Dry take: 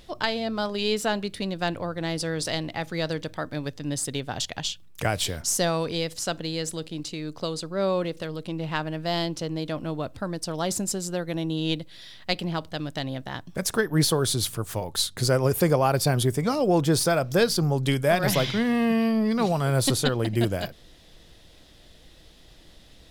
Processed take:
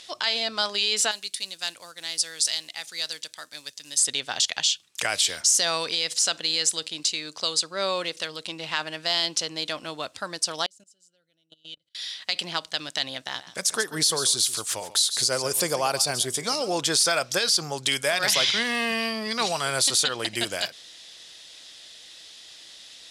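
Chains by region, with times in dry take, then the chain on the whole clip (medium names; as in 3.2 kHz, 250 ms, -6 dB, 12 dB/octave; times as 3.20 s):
1.11–3.99 s: short-mantissa float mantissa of 4-bit + pre-emphasis filter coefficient 0.8
10.66–11.95 s: amplifier tone stack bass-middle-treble 10-0-1 + level held to a coarse grid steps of 22 dB + small resonant body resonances 590/1400/3000 Hz, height 12 dB, ringing for 20 ms
13.19–16.79 s: dynamic bell 1.9 kHz, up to -6 dB, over -39 dBFS, Q 0.71 + delay 140 ms -15 dB
whole clip: frequency weighting ITU-R 468; peak limiter -12.5 dBFS; trim +1.5 dB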